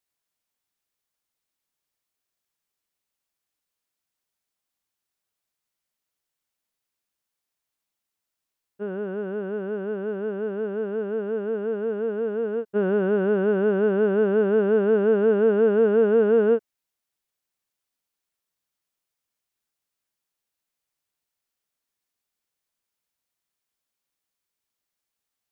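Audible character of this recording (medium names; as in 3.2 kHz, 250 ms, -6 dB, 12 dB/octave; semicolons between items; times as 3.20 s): noise floor -85 dBFS; spectral tilt -4.5 dB/octave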